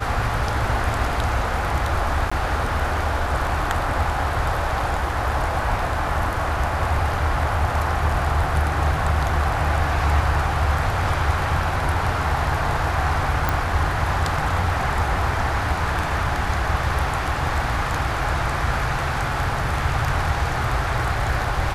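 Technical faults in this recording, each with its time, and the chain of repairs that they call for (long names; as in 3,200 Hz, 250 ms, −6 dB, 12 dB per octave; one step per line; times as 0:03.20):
0:02.30–0:02.31: drop-out 15 ms
0:13.49: click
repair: click removal
repair the gap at 0:02.30, 15 ms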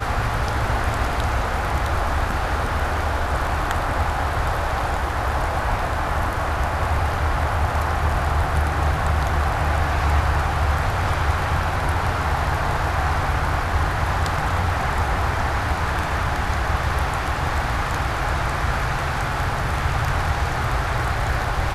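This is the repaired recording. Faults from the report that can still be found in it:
none of them is left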